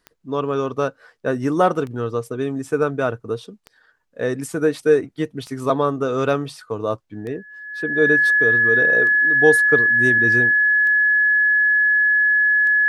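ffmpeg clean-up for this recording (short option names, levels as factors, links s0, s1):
-af "adeclick=t=4,bandreject=f=1700:w=30"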